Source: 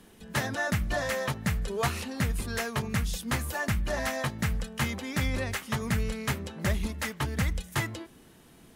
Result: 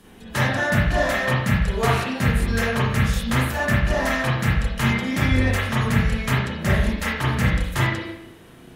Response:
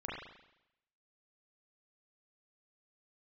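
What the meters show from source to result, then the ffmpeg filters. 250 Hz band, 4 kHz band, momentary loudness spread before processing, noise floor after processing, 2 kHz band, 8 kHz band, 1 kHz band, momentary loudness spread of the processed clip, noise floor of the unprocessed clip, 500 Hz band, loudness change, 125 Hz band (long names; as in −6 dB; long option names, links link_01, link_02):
+10.0 dB, +7.5 dB, 3 LU, −46 dBFS, +10.0 dB, +2.5 dB, +9.0 dB, 3 LU, −55 dBFS, +8.5 dB, +9.0 dB, +10.5 dB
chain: -filter_complex "[1:a]atrim=start_sample=2205,asetrate=48510,aresample=44100[link_01];[0:a][link_01]afir=irnorm=-1:irlink=0,volume=8.5dB"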